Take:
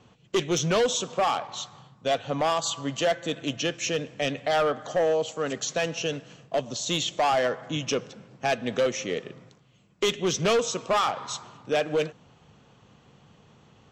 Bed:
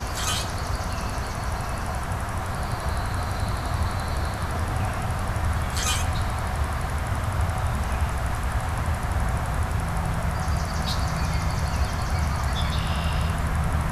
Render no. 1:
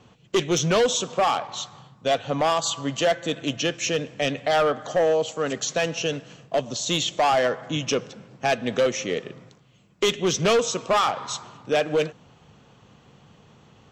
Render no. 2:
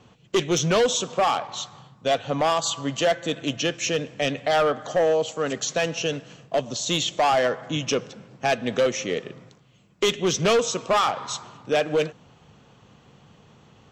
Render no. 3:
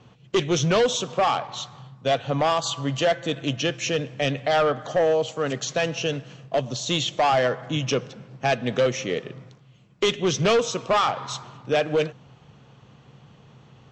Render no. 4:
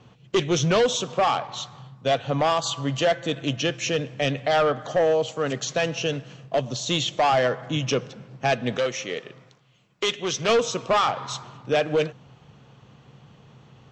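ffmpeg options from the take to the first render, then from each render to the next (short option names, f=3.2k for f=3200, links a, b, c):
-af "volume=3dB"
-af anull
-af "lowpass=6.1k,equalizer=f=130:w=5.4:g=9"
-filter_complex "[0:a]asettb=1/sr,asplit=3[a][b][c];[a]atrim=end=8.774[d];[b]atrim=start=8.77:end=10.49,asetpts=PTS-STARTPTS,afade=t=in:d=0.004:c=qsin,afade=t=out:st=1.716:d=0.004:c=qsin,lowshelf=f=380:g=-11[e];[c]atrim=start=10.486[f];[d][e]acrossfade=d=0.004:c1=hsin:c2=qsin[g];[g][f]acrossfade=d=0.004:c1=qsin:c2=hsin"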